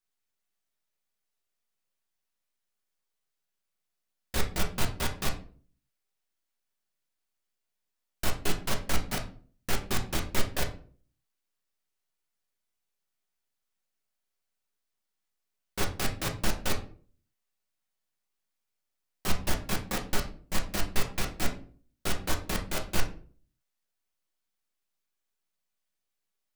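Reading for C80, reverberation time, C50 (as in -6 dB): 16.0 dB, 0.45 s, 11.5 dB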